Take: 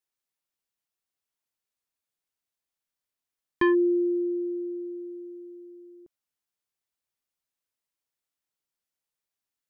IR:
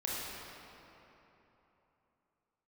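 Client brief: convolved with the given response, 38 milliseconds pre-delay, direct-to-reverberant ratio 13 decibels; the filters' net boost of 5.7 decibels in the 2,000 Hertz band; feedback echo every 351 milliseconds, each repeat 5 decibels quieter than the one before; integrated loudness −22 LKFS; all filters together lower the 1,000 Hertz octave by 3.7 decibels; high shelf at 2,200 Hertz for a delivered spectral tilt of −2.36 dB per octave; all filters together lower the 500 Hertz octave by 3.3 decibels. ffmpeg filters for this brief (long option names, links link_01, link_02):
-filter_complex "[0:a]equalizer=frequency=500:width_type=o:gain=-6.5,equalizer=frequency=1000:width_type=o:gain=-5,equalizer=frequency=2000:width_type=o:gain=6,highshelf=frequency=2200:gain=5.5,aecho=1:1:351|702|1053|1404|1755|2106|2457:0.562|0.315|0.176|0.0988|0.0553|0.031|0.0173,asplit=2[link_01][link_02];[1:a]atrim=start_sample=2205,adelay=38[link_03];[link_02][link_03]afir=irnorm=-1:irlink=0,volume=-18dB[link_04];[link_01][link_04]amix=inputs=2:normalize=0,volume=4.5dB"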